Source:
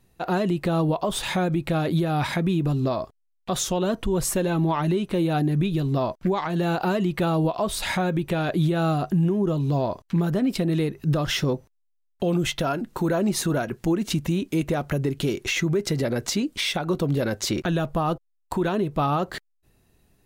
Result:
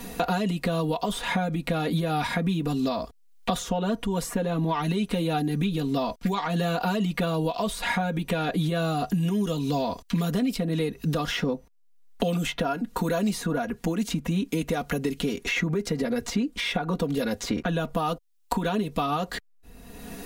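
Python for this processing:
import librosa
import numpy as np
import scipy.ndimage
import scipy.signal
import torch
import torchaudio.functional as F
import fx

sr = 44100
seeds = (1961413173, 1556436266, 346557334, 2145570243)

y = x + 0.91 * np.pad(x, (int(4.2 * sr / 1000.0), 0))[:len(x)]
y = fx.band_squash(y, sr, depth_pct=100)
y = F.gain(torch.from_numpy(y), -5.0).numpy()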